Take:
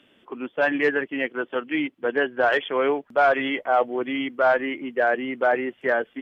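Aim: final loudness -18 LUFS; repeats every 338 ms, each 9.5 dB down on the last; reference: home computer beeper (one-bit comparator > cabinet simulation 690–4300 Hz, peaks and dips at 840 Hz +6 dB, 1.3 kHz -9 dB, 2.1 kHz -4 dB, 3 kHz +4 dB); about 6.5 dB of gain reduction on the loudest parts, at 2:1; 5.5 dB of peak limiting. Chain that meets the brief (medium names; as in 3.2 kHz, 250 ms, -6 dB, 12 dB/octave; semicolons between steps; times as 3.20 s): compression 2:1, threshold -27 dBFS; peak limiter -19.5 dBFS; feedback delay 338 ms, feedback 33%, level -9.5 dB; one-bit comparator; cabinet simulation 690–4300 Hz, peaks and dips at 840 Hz +6 dB, 1.3 kHz -9 dB, 2.1 kHz -4 dB, 3 kHz +4 dB; trim +15.5 dB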